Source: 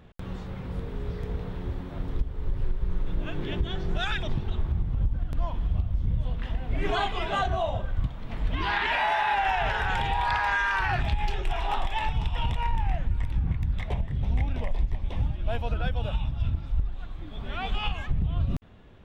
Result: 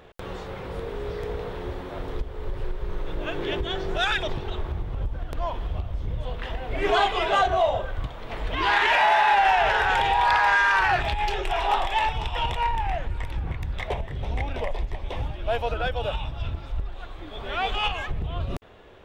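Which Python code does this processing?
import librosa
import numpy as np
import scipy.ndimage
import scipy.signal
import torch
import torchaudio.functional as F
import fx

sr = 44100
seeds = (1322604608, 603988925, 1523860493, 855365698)

p1 = fx.low_shelf_res(x, sr, hz=300.0, db=-9.5, q=1.5)
p2 = 10.0 ** (-26.5 / 20.0) * np.tanh(p1 / 10.0 ** (-26.5 / 20.0))
p3 = p1 + (p2 * 10.0 ** (-4.5 / 20.0))
y = p3 * 10.0 ** (3.0 / 20.0)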